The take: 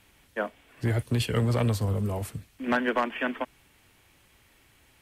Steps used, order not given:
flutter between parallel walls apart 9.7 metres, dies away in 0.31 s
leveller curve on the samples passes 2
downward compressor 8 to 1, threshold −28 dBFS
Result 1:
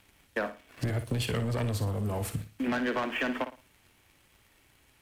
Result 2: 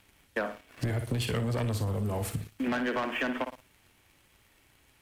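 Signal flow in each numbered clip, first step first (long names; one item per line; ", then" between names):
leveller curve on the samples, then downward compressor, then flutter between parallel walls
flutter between parallel walls, then leveller curve on the samples, then downward compressor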